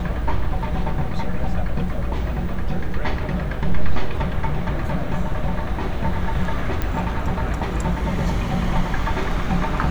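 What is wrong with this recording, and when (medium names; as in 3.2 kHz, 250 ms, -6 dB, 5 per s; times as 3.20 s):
6.82 s: pop -10 dBFS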